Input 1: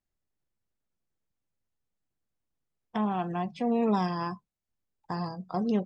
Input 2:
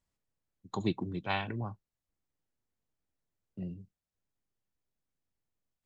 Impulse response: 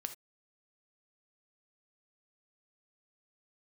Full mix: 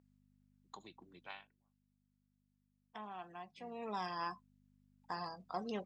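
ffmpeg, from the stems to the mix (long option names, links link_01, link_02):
-filter_complex "[0:a]acontrast=83,aeval=exprs='val(0)+0.0112*(sin(2*PI*50*n/s)+sin(2*PI*2*50*n/s)/2+sin(2*PI*3*50*n/s)/3+sin(2*PI*4*50*n/s)/4+sin(2*PI*5*50*n/s)/5)':channel_layout=same,volume=1dB,afade=type=out:start_time=1.3:duration=0.25:silence=0.398107,afade=type=in:start_time=3.73:duration=0.55:silence=0.354813,asplit=2[link_01][link_02];[1:a]acompressor=threshold=-34dB:ratio=5,volume=-5dB[link_03];[link_02]apad=whole_len=258148[link_04];[link_03][link_04]sidechaingate=range=-33dB:threshold=-49dB:ratio=16:detection=peak[link_05];[link_01][link_05]amix=inputs=2:normalize=0,highpass=frequency=1500:poles=1,highshelf=frequency=4300:gain=-5"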